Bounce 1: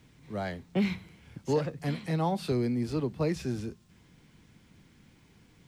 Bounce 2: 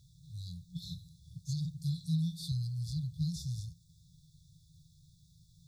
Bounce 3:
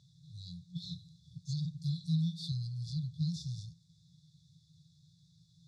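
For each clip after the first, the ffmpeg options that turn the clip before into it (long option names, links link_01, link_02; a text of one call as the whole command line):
ffmpeg -i in.wav -af "afftfilt=real='re*(1-between(b*sr/4096,180,3400))':imag='im*(1-between(b*sr/4096,180,3400))':win_size=4096:overlap=0.75" out.wav
ffmpeg -i in.wav -af "highpass=160,lowpass=4600,volume=3.5dB" out.wav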